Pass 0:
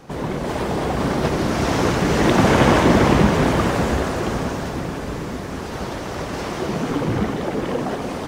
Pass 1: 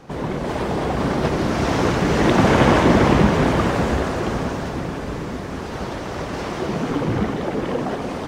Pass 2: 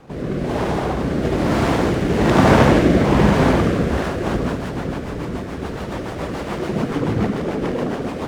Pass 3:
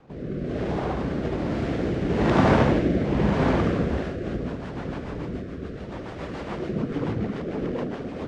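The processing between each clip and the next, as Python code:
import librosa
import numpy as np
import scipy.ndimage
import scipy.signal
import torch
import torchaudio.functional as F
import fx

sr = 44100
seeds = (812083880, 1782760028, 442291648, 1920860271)

y1 = fx.high_shelf(x, sr, hz=7700.0, db=-8.0)
y2 = y1 + 10.0 ** (-5.0 / 20.0) * np.pad(y1, (int(74 * sr / 1000.0), 0))[:len(y1)]
y2 = fx.rotary_switch(y2, sr, hz=1.1, then_hz=7.0, switch_at_s=3.72)
y2 = fx.running_max(y2, sr, window=5)
y2 = y2 * librosa.db_to_amplitude(2.0)
y3 = fx.rotary_switch(y2, sr, hz=0.75, then_hz=5.0, switch_at_s=6.6)
y3 = fx.air_absorb(y3, sr, metres=88.0)
y3 = y3 * librosa.db_to_amplitude(-5.0)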